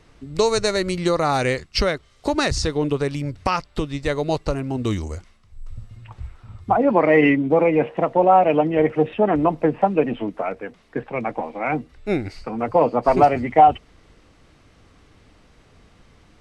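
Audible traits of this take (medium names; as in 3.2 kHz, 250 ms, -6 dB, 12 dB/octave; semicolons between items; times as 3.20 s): noise floor -55 dBFS; spectral tilt -4.5 dB/octave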